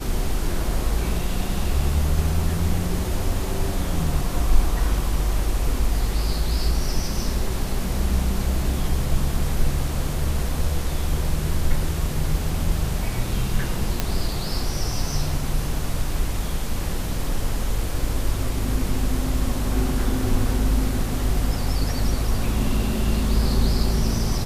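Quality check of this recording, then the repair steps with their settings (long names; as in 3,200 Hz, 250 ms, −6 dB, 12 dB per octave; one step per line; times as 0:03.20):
0:14.00: click −6 dBFS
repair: click removal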